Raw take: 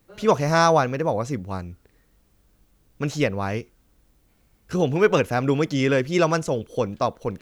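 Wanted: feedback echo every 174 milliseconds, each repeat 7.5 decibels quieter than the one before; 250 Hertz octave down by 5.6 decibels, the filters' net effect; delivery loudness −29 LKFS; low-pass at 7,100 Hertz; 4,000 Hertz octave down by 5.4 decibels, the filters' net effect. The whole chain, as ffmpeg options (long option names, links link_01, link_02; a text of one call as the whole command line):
ffmpeg -i in.wav -af "lowpass=7100,equalizer=frequency=250:width_type=o:gain=-8.5,equalizer=frequency=4000:width_type=o:gain=-7,aecho=1:1:174|348|522|696|870:0.422|0.177|0.0744|0.0312|0.0131,volume=-5dB" out.wav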